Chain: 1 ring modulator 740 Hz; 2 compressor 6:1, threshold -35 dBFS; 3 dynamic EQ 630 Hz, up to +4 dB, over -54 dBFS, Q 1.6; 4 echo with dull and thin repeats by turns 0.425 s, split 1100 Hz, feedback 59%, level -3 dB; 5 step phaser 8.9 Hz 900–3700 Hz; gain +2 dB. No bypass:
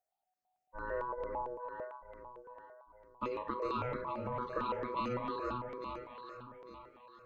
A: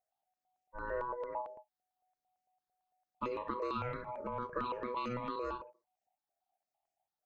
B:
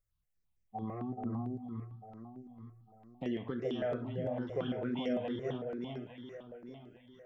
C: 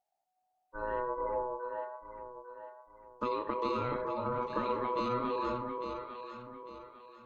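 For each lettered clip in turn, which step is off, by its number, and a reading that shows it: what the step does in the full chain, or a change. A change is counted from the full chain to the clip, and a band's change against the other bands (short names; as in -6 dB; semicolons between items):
4, momentary loudness spread change -8 LU; 1, momentary loudness spread change -1 LU; 5, 125 Hz band -3.0 dB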